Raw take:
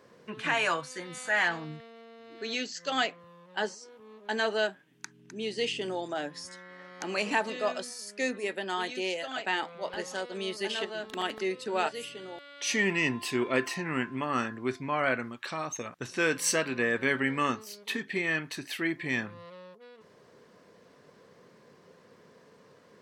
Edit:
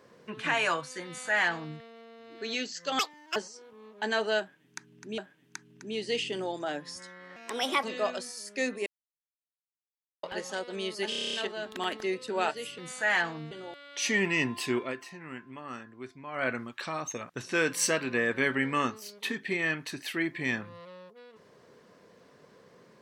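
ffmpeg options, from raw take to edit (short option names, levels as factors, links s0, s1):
-filter_complex "[0:a]asplit=20[s0][s1][s2][s3][s4][s5][s6][s7][s8][s9][s10][s11][s12][s13][s14][s15][s16][s17][s18][s19];[s0]atrim=end=2.994[s20];[s1]atrim=start=2.99:end=3.63,asetpts=PTS-STARTPTS,asetrate=76293,aresample=44100,atrim=end_sample=16314,asetpts=PTS-STARTPTS[s21];[s2]atrim=start=3.626:end=5.452[s22];[s3]atrim=start=4.668:end=6.854[s23];[s4]atrim=start=6.85:end=7.45,asetpts=PTS-STARTPTS,asetrate=56007,aresample=44100[s24];[s5]atrim=start=7.446:end=8.48,asetpts=PTS-STARTPTS,afade=t=out:st=1.03:d=0.004:c=hsin[s25];[s6]atrim=start=8.48:end=9.85,asetpts=PTS-STARTPTS,volume=0[s26];[s7]atrim=start=9.85:end=10.742,asetpts=PTS-STARTPTS,afade=t=in:d=0.004:c=hsin[s27];[s8]atrim=start=10.708:end=10.742[s28];[s9]atrim=start=10.708:end=10.742[s29];[s10]atrim=start=10.708:end=10.742[s30];[s11]atrim=start=10.708:end=10.742[s31];[s12]atrim=start=10.708:end=10.742[s32];[s13]atrim=start=10.708:end=10.742[s33];[s14]atrim=start=10.708:end=10.742[s34];[s15]atrim=start=10.708:end=12.162[s35];[s16]atrim=start=1.048:end=1.782[s36];[s17]atrim=start=12.158:end=13.59,asetpts=PTS-STARTPTS,afade=t=out:st=1.232:d=0.2:silence=0.266073[s37];[s18]atrim=start=13.59:end=14.96,asetpts=PTS-STARTPTS,volume=0.266[s38];[s19]atrim=start=14.96,asetpts=PTS-STARTPTS,afade=t=in:d=0.2:silence=0.266073[s39];[s20][s21]acrossfade=d=0.004:c1=hsin:c2=hsin[s40];[s40][s22]acrossfade=d=0.004:c1=hsin:c2=hsin[s41];[s41][s23]acrossfade=d=0.004:c1=hsin:c2=hsin[s42];[s42][s24]acrossfade=d=0.004:c1=hsin:c2=hsin[s43];[s25][s26][s27]concat=n=3:v=0:a=1[s44];[s43][s44]acrossfade=d=0.004:c1=hsin:c2=hsin[s45];[s45][s28]acrossfade=d=0.004:c1=hsin:c2=hsin[s46];[s46][s29]acrossfade=d=0.004:c1=hsin:c2=hsin[s47];[s47][s30]acrossfade=d=0.004:c1=hsin:c2=hsin[s48];[s48][s31]acrossfade=d=0.004:c1=hsin:c2=hsin[s49];[s49][s32]acrossfade=d=0.004:c1=hsin:c2=hsin[s50];[s50][s33]acrossfade=d=0.004:c1=hsin:c2=hsin[s51];[s51][s34]acrossfade=d=0.004:c1=hsin:c2=hsin[s52];[s52][s35]acrossfade=d=0.004:c1=hsin:c2=hsin[s53];[s53][s36]acrossfade=d=0.004:c1=hsin:c2=hsin[s54];[s37][s38][s39]concat=n=3:v=0:a=1[s55];[s54][s55]acrossfade=d=0.004:c1=hsin:c2=hsin"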